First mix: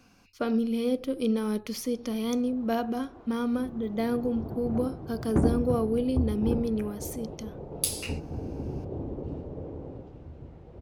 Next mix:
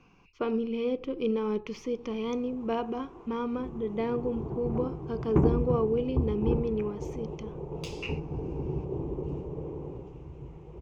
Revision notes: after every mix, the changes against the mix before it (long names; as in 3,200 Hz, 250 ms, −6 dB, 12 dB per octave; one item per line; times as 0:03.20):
speech: add high-frequency loss of the air 230 metres
master: add EQ curve with evenly spaced ripples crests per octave 0.73, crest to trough 10 dB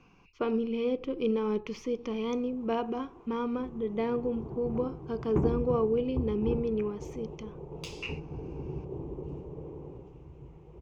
background −5.0 dB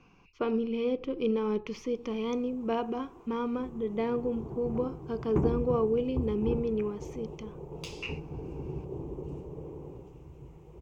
background: remove high-frequency loss of the air 110 metres